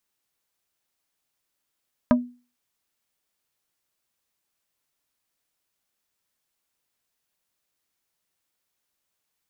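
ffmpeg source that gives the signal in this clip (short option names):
-f lavfi -i "aevalsrc='0.266*pow(10,-3*t/0.35)*sin(2*PI*245*t)+0.178*pow(10,-3*t/0.117)*sin(2*PI*612.5*t)+0.119*pow(10,-3*t/0.066)*sin(2*PI*980*t)+0.0794*pow(10,-3*t/0.051)*sin(2*PI*1225*t)+0.0531*pow(10,-3*t/0.037)*sin(2*PI*1592.5*t)':d=0.45:s=44100"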